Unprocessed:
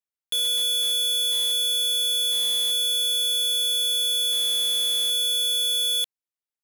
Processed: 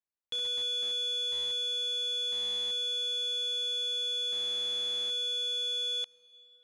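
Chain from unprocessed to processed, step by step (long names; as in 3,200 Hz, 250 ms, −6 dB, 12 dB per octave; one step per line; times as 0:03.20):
low-pass filter 7,300 Hz 24 dB per octave
high-shelf EQ 2,600 Hz −9.5 dB
on a send: convolution reverb RT60 4.8 s, pre-delay 68 ms, DRR 21.5 dB
on the sum: level −2.5 dB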